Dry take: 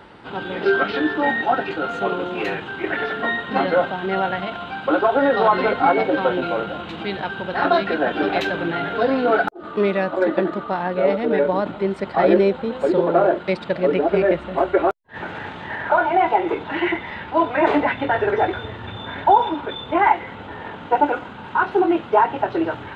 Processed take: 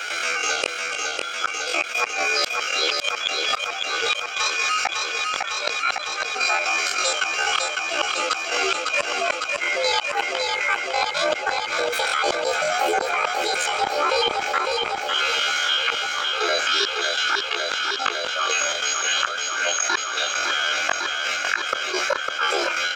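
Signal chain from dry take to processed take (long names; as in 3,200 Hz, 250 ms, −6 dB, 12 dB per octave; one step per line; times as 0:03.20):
high-pass filter 890 Hz 12 dB per octave
comb filter 2.3 ms, depth 68%
gate pattern ".xx.x.xxxxxx" 137 BPM −12 dB
frequency shifter −140 Hz
chorus effect 0.61 Hz, depth 4 ms
gate with flip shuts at −19 dBFS, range −41 dB
pitch shifter +11.5 semitones
repeating echo 554 ms, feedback 58%, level −11 dB
envelope flattener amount 70%
level +7.5 dB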